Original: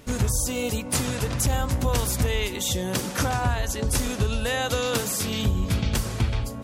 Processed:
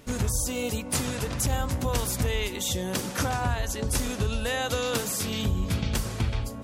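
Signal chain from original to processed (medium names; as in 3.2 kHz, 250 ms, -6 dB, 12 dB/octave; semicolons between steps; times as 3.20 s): hum notches 60/120 Hz; trim -2.5 dB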